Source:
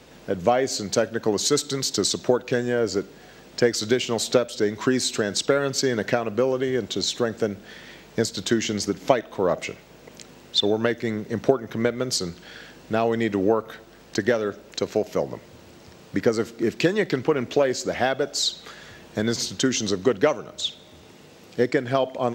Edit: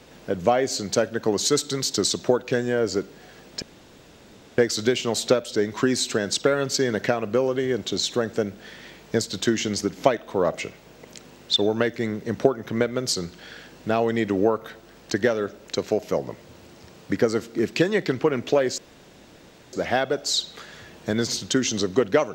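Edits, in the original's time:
3.62 s: insert room tone 0.96 s
17.82 s: insert room tone 0.95 s

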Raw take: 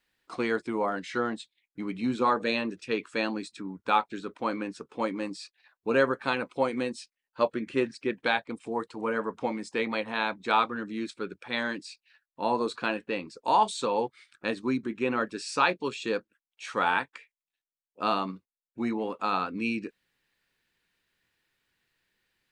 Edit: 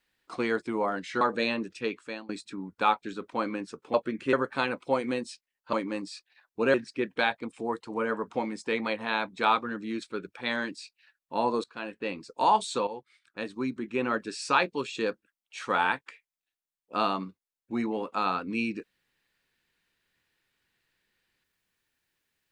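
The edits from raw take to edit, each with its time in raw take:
1.21–2.28 s: delete
2.83–3.36 s: fade out, to -21 dB
5.01–6.02 s: swap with 7.42–7.81 s
12.71–13.22 s: fade in, from -22.5 dB
13.94–15.23 s: fade in, from -12.5 dB

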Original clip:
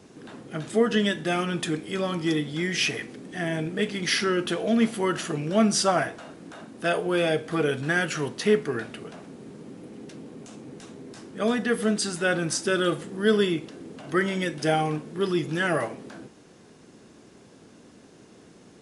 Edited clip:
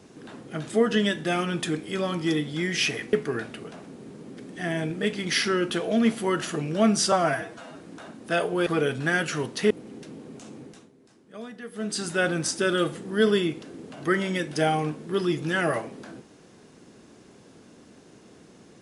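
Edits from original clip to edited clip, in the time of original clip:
5.88–6.33 s: stretch 1.5×
7.20–7.49 s: delete
8.53–9.77 s: move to 3.13 s
10.64–12.13 s: dip -15 dB, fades 0.34 s

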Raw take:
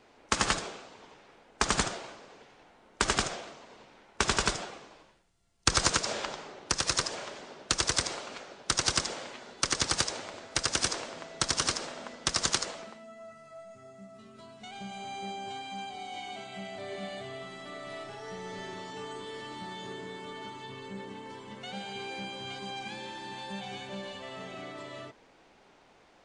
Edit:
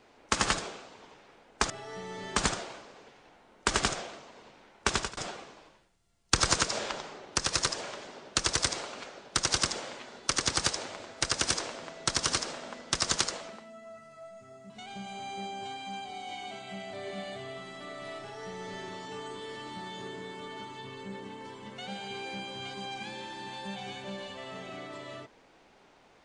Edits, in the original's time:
4.25–4.51 s: fade out
14.04–14.55 s: delete
18.05–18.71 s: copy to 1.70 s

